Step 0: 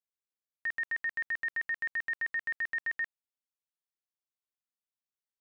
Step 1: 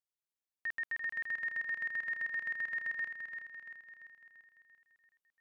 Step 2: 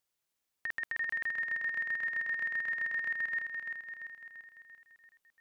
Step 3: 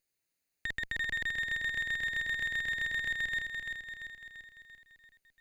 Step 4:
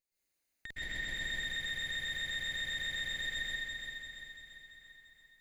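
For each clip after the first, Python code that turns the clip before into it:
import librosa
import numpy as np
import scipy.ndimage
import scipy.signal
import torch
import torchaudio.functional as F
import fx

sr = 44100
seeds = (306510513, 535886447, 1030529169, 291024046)

y1 = fx.echo_feedback(x, sr, ms=341, feedback_pct=55, wet_db=-7)
y1 = y1 * librosa.db_to_amplitude(-4.0)
y2 = fx.over_compress(y1, sr, threshold_db=-39.0, ratio=-0.5)
y2 = y2 * librosa.db_to_amplitude(6.5)
y3 = fx.lower_of_two(y2, sr, delay_ms=0.46)
y3 = y3 * librosa.db_to_amplitude(1.5)
y4 = fx.rev_plate(y3, sr, seeds[0], rt60_s=1.2, hf_ratio=0.9, predelay_ms=105, drr_db=-10.0)
y4 = fx.dynamic_eq(y4, sr, hz=1200.0, q=0.85, threshold_db=-47.0, ratio=4.0, max_db=-4)
y4 = y4 * librosa.db_to_amplitude(-8.5)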